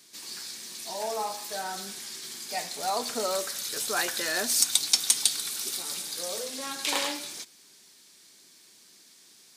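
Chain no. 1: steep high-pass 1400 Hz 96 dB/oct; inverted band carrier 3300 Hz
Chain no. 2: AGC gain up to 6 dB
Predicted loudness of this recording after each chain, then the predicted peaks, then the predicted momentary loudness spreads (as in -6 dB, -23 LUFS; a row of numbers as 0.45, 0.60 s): -41.0, -24.5 LUFS; -18.0, -1.5 dBFS; 18, 12 LU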